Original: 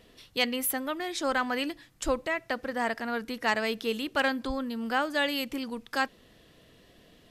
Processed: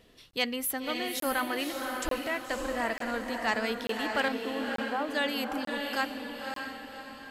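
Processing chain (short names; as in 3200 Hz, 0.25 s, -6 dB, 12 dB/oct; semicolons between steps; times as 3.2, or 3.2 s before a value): 4.28–5.09 Butterworth band-pass 520 Hz, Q 0.57; diffused feedback echo 0.571 s, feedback 46%, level -4 dB; crackling interface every 0.89 s, samples 1024, zero, from 0.31; gain -2.5 dB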